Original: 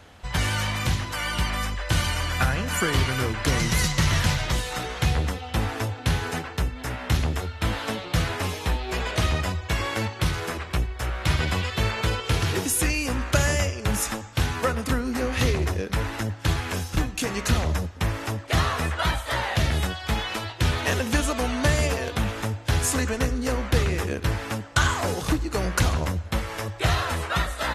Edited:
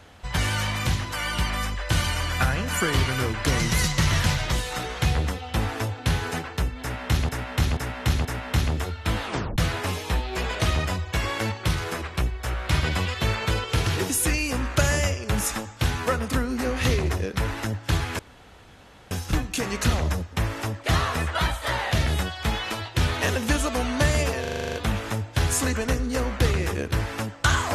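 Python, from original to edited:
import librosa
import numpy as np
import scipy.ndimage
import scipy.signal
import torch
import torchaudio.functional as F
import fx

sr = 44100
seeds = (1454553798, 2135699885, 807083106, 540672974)

y = fx.edit(x, sr, fx.repeat(start_s=6.81, length_s=0.48, count=4),
    fx.tape_stop(start_s=7.79, length_s=0.35),
    fx.insert_room_tone(at_s=16.75, length_s=0.92),
    fx.stutter(start_s=22.05, slice_s=0.04, count=9), tone=tone)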